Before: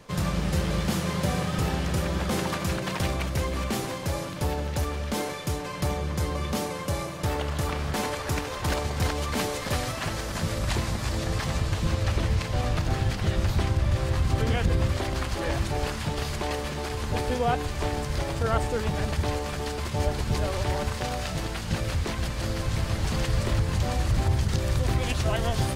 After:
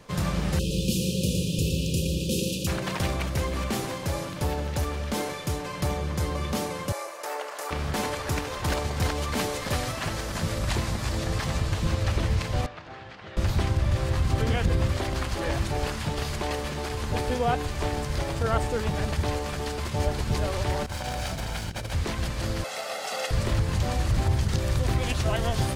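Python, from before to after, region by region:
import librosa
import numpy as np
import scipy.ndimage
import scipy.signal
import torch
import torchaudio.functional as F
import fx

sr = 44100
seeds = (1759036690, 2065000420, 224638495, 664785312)

y = fx.chain(x, sr, fx.brickwall_bandstop(low_hz=570.0, high_hz=2400.0),
    fx.high_shelf(hz=3000.0, db=4.5),
    fx.echo_crushed(ms=116, feedback_pct=35, bits=9, wet_db=-7.0), at=(0.59, 2.67))
y = fx.chain(y, sr, fx.highpass(hz=470.0, slope=24),
    fx.peak_eq(hz=3400.0, db=-7.0, octaves=0.73), at=(6.92, 7.71))
y = fx.chain(y, sr, fx.highpass(hz=1400.0, slope=6),
    fx.spacing_loss(db_at_10k=32), at=(12.66, 13.37))
y = fx.chain(y, sr, fx.lower_of_two(delay_ms=1.3),
    fx.over_compress(threshold_db=-31.0, ratio=-0.5), at=(20.86, 21.93))
y = fx.chain(y, sr, fx.highpass(hz=350.0, slope=24),
    fx.peak_eq(hz=760.0, db=4.5, octaves=0.27),
    fx.comb(ms=1.5, depth=0.73), at=(22.64, 23.31))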